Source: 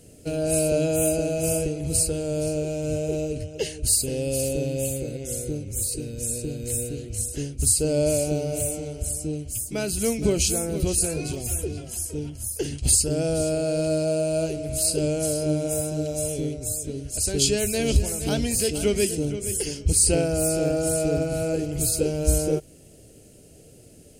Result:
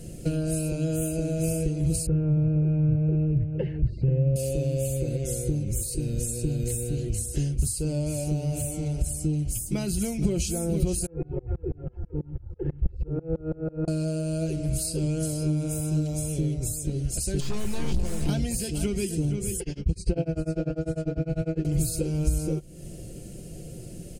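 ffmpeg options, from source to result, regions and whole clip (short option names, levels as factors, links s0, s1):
-filter_complex "[0:a]asettb=1/sr,asplit=3[s0][s1][s2];[s0]atrim=end=2.064[s3];[s1]atrim=start=2.06:end=4.36,asetpts=PTS-STARTPTS,afade=t=in:d=0.004:c=qsin,afade=t=out:st=2.296:d=0.004:c=qsin,lowpass=f=2000:w=0.5412,lowpass=f=2000:w=1.3066,equalizer=f=130:t=o:w=0.66:g=12[s4];[s2]atrim=start=4.356[s5];[s3][s4]acrossfade=d=0.004:c1=hsin:c2=qsin[s6];[s6][s5]acrossfade=d=0.004:c1=qsin:c2=hsin,asettb=1/sr,asplit=3[s7][s8][s9];[s7]atrim=end=11.064[s10];[s8]atrim=start=11.06:end=13.88,asetpts=PTS-STARTPTS,afade=t=in:d=0.004:c=qsin,afade=t=out:st=2.816:d=0.004:c=qsin,lowpass=f=1500:w=0.5412,lowpass=f=1500:w=1.3066,aecho=1:1:2.3:0.67,atrim=end_sample=124362,aeval=exprs='val(0)*pow(10,-31*if(lt(mod(-6.1*n/s,1),2*abs(-6.1)/1000),1-mod(-6.1*n/s,1)/(2*abs(-6.1)/1000),(mod(-6.1*n/s,1)-2*abs(-6.1)/1000)/(1-2*abs(-6.1)/1000))/20)':c=same[s11];[s9]atrim=start=13.876[s12];[s10][s11]acrossfade=d=0.004:c1=hsin:c2=qsin[s13];[s13][s12]acrossfade=d=0.004:c1=qsin:c2=hsin,asettb=1/sr,asplit=3[s14][s15][s16];[s14]atrim=end=17.404[s17];[s15]atrim=start=17.4:end=18.29,asetpts=PTS-STARTPTS,afade=t=in:d=0.004:c=qsin,afade=t=out:st=0.886:d=0.004:c=qsin,aeval=exprs='(tanh(28.2*val(0)+0.75)-tanh(0.75))/28.2':c=same,acrossover=split=5500[s18][s19];[s19]acompressor=threshold=0.00631:ratio=4:attack=1:release=60[s20];[s18][s20]amix=inputs=2:normalize=0[s21];[s16]atrim=start=18.286[s22];[s17][s21]acrossfade=d=0.004:c1=hsin:c2=qsin[s23];[s23][s22]acrossfade=d=0.004:c1=qsin:c2=hsin,asettb=1/sr,asplit=3[s24][s25][s26];[s24]atrim=end=19.604[s27];[s25]atrim=start=19.6:end=21.65,asetpts=PTS-STARTPTS,afade=t=in:d=0.004:c=qsin,afade=t=out:st=2.046:d=0.004:c=qsin,lowpass=3200,tremolo=f=10:d=0.98[s28];[s26]atrim=start=21.646[s29];[s27][s28]acrossfade=d=0.004:c1=hsin:c2=qsin[s30];[s30][s29]acrossfade=d=0.004:c1=qsin:c2=hsin,acompressor=threshold=0.0178:ratio=4,lowshelf=f=220:g=12,aecho=1:1:5.7:0.59,volume=1.41"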